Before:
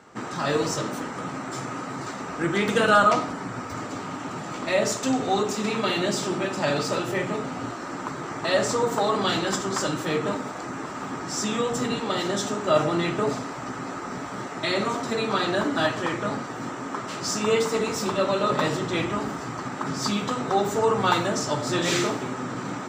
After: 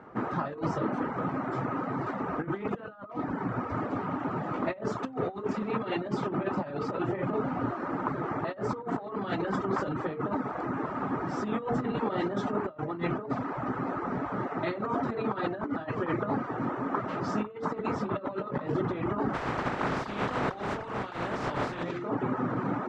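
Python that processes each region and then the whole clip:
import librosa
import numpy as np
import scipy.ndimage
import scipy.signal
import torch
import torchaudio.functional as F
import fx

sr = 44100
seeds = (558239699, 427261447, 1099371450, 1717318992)

y = fx.spec_flatten(x, sr, power=0.34, at=(19.33, 21.82), fade=0.02)
y = fx.over_compress(y, sr, threshold_db=-30.0, ratio=-1.0, at=(19.33, 21.82), fade=0.02)
y = fx.dereverb_blind(y, sr, rt60_s=0.52)
y = scipy.signal.sosfilt(scipy.signal.butter(2, 1400.0, 'lowpass', fs=sr, output='sos'), y)
y = fx.over_compress(y, sr, threshold_db=-30.0, ratio=-0.5)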